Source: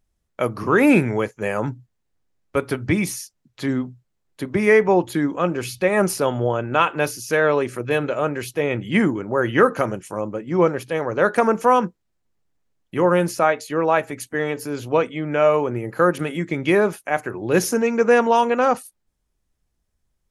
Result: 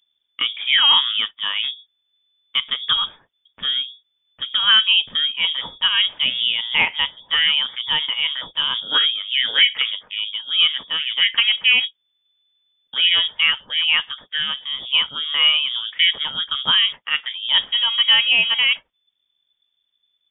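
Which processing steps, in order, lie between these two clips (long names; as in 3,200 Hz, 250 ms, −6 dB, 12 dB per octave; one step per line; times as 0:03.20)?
voice inversion scrambler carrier 3,500 Hz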